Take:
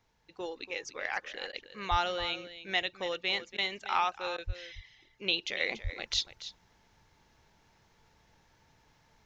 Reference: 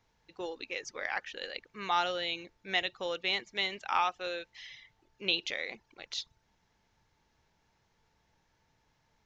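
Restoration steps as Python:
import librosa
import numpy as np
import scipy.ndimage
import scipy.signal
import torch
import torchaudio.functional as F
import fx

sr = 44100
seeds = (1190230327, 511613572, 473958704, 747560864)

y = fx.fix_deplosive(x, sr, at_s=(1.9, 4.46, 5.83))
y = fx.fix_interpolate(y, sr, at_s=(1.52, 3.57, 4.37), length_ms=10.0)
y = fx.fix_echo_inverse(y, sr, delay_ms=285, level_db=-13.0)
y = fx.fix_level(y, sr, at_s=5.6, step_db=-7.0)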